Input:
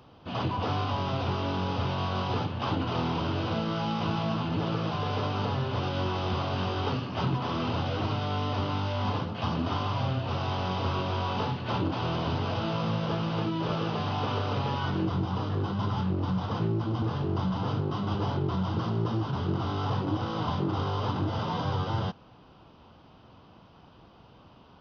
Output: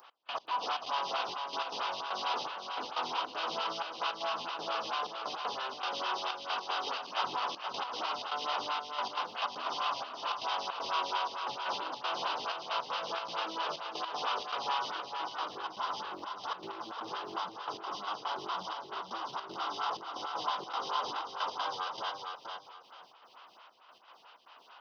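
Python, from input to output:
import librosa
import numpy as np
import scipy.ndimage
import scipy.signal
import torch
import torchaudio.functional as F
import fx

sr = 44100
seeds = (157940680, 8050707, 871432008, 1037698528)

y = scipy.signal.sosfilt(scipy.signal.butter(2, 1200.0, 'highpass', fs=sr, output='sos'), x)
y = fx.high_shelf(y, sr, hz=5600.0, db=4.5)
y = fx.step_gate(y, sr, bpm=157, pattern='x..x.xxx.xxxx', floor_db=-24.0, edge_ms=4.5)
y = fx.dynamic_eq(y, sr, hz=2000.0, q=1.1, threshold_db=-51.0, ratio=4.0, max_db=-6)
y = fx.echo_feedback(y, sr, ms=472, feedback_pct=26, wet_db=-5.5)
y = fx.stagger_phaser(y, sr, hz=4.5)
y = F.gain(torch.from_numpy(y), 8.5).numpy()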